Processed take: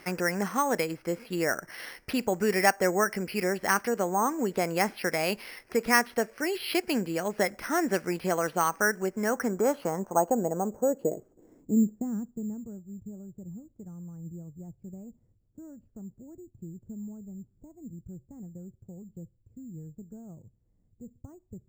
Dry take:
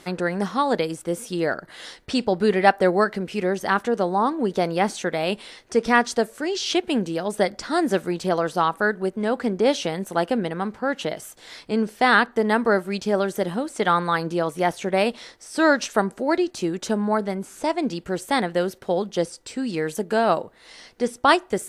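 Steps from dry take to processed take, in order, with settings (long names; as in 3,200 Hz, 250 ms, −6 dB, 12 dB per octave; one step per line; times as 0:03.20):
downward compressor 1.5 to 1, threshold −23 dBFS, peak gain reduction 5 dB
low-pass filter sweep 2,300 Hz → 110 Hz, 0:09.03–0:12.82
bad sample-rate conversion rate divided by 6×, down filtered, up hold
level −4 dB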